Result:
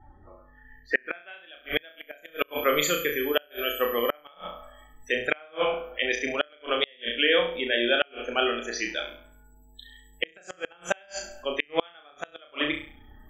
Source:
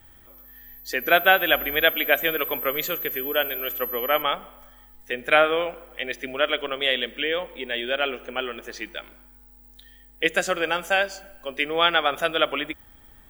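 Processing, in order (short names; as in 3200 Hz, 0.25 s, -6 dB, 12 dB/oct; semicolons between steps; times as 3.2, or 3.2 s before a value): loudest bins only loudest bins 64; flutter echo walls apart 5.8 m, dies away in 0.45 s; low-pass sweep 1000 Hz -> 7100 Hz, 0.53–2.06; flipped gate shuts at -10 dBFS, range -34 dB; gain +2 dB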